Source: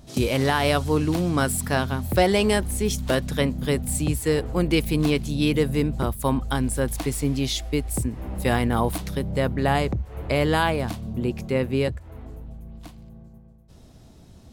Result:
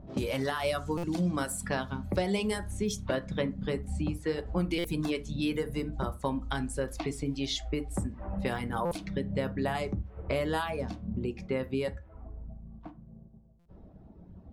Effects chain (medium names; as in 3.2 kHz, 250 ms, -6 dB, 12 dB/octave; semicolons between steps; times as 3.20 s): reverb removal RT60 1.7 s; 3.02–4.29 s: low-pass 3.5 kHz 6 dB/octave; level-controlled noise filter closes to 870 Hz, open at -20 dBFS; compression 4:1, threshold -30 dBFS, peak gain reduction 13 dB; reverberation RT60 0.30 s, pre-delay 5 ms, DRR 7 dB; buffer glitch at 0.97/4.78/8.85/13.59 s, samples 256, times 10